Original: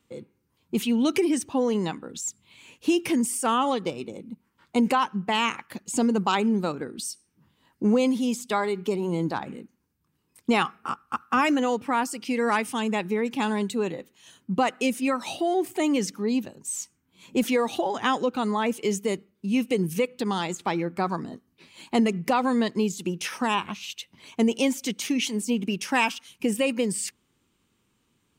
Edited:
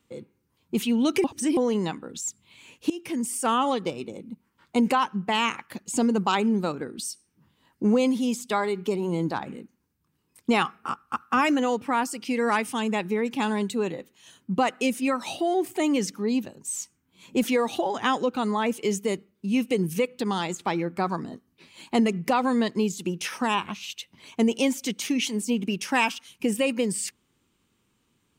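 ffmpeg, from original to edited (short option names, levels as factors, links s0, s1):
-filter_complex "[0:a]asplit=4[s0][s1][s2][s3];[s0]atrim=end=1.242[s4];[s1]atrim=start=1.238:end=1.572,asetpts=PTS-STARTPTS,areverse[s5];[s2]atrim=start=1.568:end=2.9,asetpts=PTS-STARTPTS,afade=t=out:st=1.328:d=0.004:c=hsin:silence=0.133352[s6];[s3]atrim=start=2.9,asetpts=PTS-STARTPTS,afade=t=in:d=0.55:silence=0.133352[s7];[s4][s5]acrossfade=d=0.004:c1=hsin:c2=hsin[s8];[s6][s7]concat=n=2:v=0:a=1[s9];[s8][s9]acrossfade=d=0.004:c1=hsin:c2=hsin"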